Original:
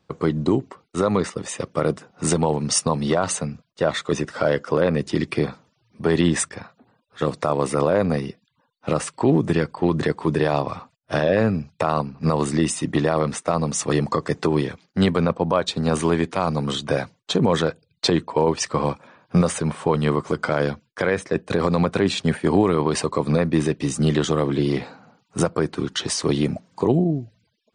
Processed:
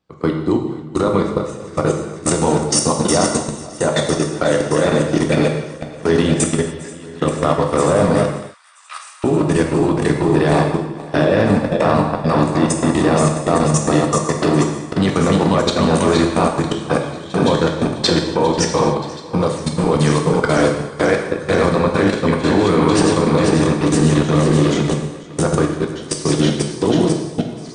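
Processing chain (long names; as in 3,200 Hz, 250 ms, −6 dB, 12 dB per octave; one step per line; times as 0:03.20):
feedback delay that plays each chunk backwards 245 ms, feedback 83%, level −5 dB
output level in coarse steps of 20 dB
0:08.23–0:09.24: Bessel high-pass filter 1,800 Hz, order 8
convolution reverb, pre-delay 3 ms, DRR 2 dB
level +4.5 dB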